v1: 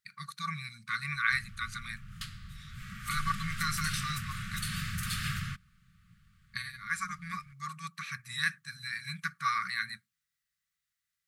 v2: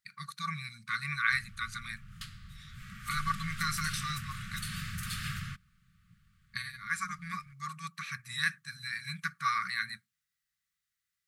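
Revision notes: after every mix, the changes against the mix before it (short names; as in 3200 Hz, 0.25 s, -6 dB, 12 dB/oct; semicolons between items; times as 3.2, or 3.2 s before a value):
background -3.0 dB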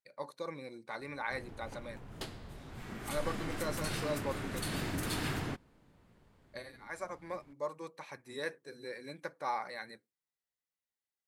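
speech -11.5 dB; master: remove brick-wall FIR band-stop 210–1100 Hz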